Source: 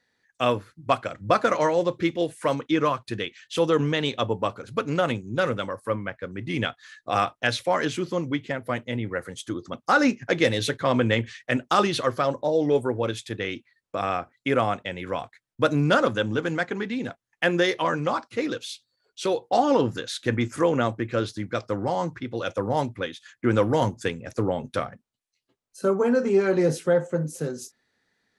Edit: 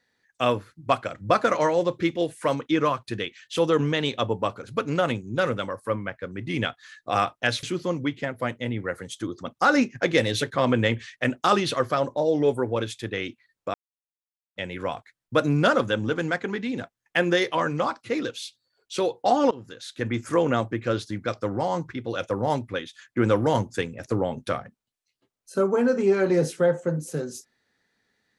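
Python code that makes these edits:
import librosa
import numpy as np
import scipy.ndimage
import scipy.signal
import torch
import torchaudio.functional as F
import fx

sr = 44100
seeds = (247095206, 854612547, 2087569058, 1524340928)

y = fx.edit(x, sr, fx.cut(start_s=7.63, length_s=0.27),
    fx.silence(start_s=14.01, length_s=0.82),
    fx.fade_in_from(start_s=19.78, length_s=0.86, floor_db=-21.5), tone=tone)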